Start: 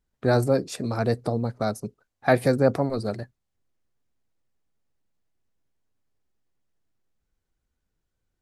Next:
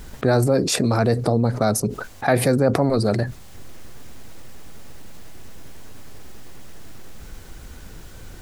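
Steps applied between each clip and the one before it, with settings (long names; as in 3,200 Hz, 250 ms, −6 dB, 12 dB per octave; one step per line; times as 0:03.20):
envelope flattener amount 70%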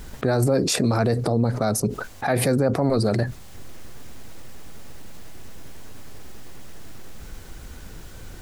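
brickwall limiter −10.5 dBFS, peak gain reduction 7 dB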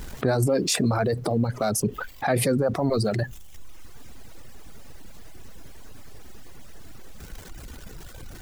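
converter with a step at zero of −38 dBFS
reverb reduction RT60 1.3 s
level −1 dB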